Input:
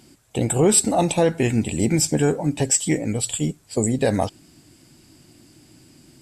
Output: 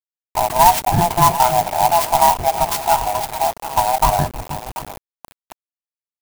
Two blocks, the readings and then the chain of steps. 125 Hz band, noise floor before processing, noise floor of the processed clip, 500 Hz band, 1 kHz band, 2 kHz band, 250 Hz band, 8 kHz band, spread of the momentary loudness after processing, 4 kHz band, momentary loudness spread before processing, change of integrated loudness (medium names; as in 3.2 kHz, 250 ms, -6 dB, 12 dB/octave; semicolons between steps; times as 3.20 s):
-1.5 dB, -54 dBFS, under -85 dBFS, +1.0 dB, +17.5 dB, +4.5 dB, -8.5 dB, -3.5 dB, 15 LU, +5.0 dB, 9 LU, +4.5 dB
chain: split-band scrambler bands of 500 Hz; graphic EQ 125/250/500/1000/4000 Hz +5/-7/-4/+5/-9 dB; on a send: two-band feedback delay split 740 Hz, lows 312 ms, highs 735 ms, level -10 dB; on the sum: hysteresis with a dead band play -23 dBFS; resonant high shelf 7.2 kHz -13.5 dB, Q 3; hum notches 60/120/180/240 Hz; bit crusher 6-bit; sampling jitter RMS 0.053 ms; trim +4 dB